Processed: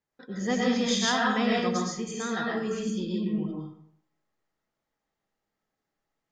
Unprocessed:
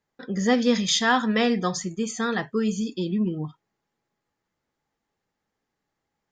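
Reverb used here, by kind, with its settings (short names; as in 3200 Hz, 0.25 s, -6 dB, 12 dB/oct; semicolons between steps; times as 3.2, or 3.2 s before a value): digital reverb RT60 0.66 s, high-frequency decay 0.7×, pre-delay 75 ms, DRR -4 dB; gain -8 dB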